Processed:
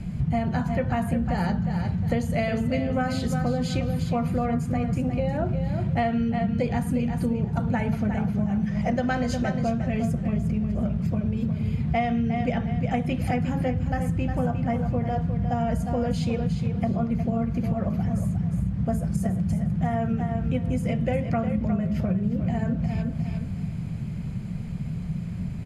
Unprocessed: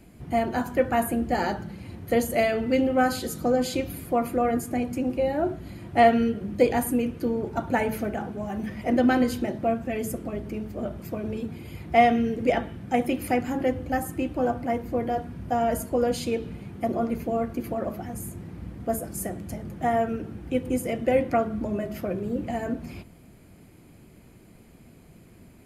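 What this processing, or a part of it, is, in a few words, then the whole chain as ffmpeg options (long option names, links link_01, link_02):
jukebox: -filter_complex "[0:a]asettb=1/sr,asplit=3[link_01][link_02][link_03];[link_01]atrim=end=8.664[link_04];[link_02]atrim=start=8.66:end=9.61,asetpts=PTS-STARTPTS,afade=type=in:duration=0.004:curve=qsin,afade=type=out:start_time=0.946:duration=0.004:curve=qsin,equalizer=frequency=100:width_type=o:width=0.67:gain=-4,equalizer=frequency=250:width_type=o:width=0.67:gain=-4,equalizer=frequency=630:width_type=o:width=0.67:gain=5,equalizer=frequency=1600:width_type=o:width=0.67:gain=3,equalizer=frequency=6300:width_type=o:width=0.67:gain=9[link_05];[link_03]atrim=start=9.606[link_06];[link_04][link_05]acrossfade=duration=0.004:curve1=hsin:curve2=qsin[link_07];[link_07][link_06]acrossfade=duration=0.004:curve1=qsin:curve2=hsin,lowpass=6400,lowshelf=frequency=230:width_type=q:width=3:gain=10,aecho=1:1:357|714|1071:0.355|0.0816|0.0188,acompressor=threshold=-31dB:ratio=6,volume=8.5dB"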